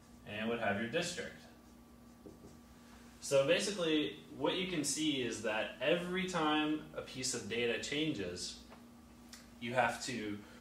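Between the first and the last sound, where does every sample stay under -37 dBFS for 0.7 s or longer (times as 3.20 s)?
1.28–3.24 s
8.50–9.33 s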